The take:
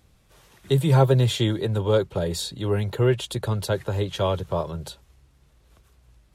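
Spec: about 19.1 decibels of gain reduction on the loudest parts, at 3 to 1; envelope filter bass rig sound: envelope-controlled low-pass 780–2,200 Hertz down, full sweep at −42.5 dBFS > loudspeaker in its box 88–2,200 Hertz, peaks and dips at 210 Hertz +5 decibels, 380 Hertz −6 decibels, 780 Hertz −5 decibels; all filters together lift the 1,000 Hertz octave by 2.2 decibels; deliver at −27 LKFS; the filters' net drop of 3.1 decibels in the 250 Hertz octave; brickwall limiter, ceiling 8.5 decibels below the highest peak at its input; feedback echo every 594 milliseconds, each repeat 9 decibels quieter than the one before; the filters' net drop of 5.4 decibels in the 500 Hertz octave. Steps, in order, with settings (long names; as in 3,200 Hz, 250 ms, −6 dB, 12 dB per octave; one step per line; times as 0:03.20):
parametric band 250 Hz −5.5 dB
parametric band 500 Hz −3.5 dB
parametric band 1,000 Hz +6.5 dB
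downward compressor 3 to 1, threshold −41 dBFS
brickwall limiter −33.5 dBFS
repeating echo 594 ms, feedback 35%, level −9 dB
envelope-controlled low-pass 780–2,200 Hz down, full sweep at −42.5 dBFS
loudspeaker in its box 88–2,200 Hz, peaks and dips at 210 Hz +5 dB, 380 Hz −6 dB, 780 Hz −5 dB
level +16 dB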